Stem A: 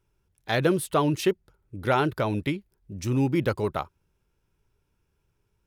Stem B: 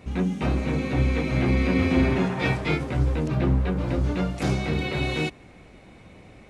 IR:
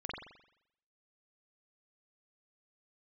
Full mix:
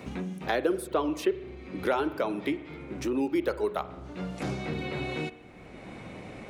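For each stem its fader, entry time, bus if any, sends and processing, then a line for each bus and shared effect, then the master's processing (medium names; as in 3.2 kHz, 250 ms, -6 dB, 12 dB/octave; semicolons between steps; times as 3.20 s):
-5.5 dB, 0.00 s, send -12.5 dB, reverb removal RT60 0.74 s; high-pass 310 Hz 24 dB/octave; bass shelf 460 Hz +9 dB
-14.0 dB, 0.00 s, send -15.5 dB, auto duck -17 dB, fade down 0.45 s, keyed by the first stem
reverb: on, RT60 0.75 s, pre-delay 43 ms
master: three bands compressed up and down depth 70%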